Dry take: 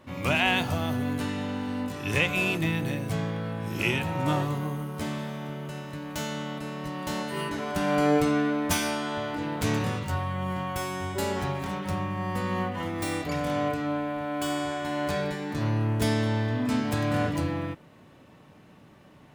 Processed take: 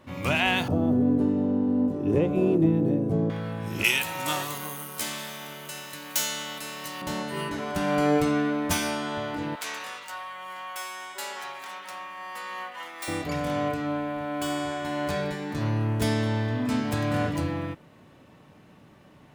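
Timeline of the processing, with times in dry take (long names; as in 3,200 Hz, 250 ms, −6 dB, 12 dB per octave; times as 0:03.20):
0:00.68–0:03.30: drawn EQ curve 110 Hz 0 dB, 360 Hz +12 dB, 2,100 Hz −19 dB
0:03.84–0:07.02: spectral tilt +4.5 dB per octave
0:09.55–0:13.08: high-pass filter 1,000 Hz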